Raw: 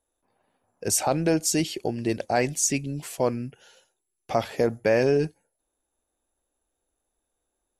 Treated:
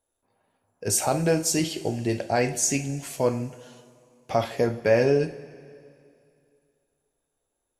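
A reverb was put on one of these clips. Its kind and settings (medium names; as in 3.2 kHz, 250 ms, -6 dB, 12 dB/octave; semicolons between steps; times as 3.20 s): two-slope reverb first 0.33 s, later 2.5 s, from -18 dB, DRR 4.5 dB; trim -1 dB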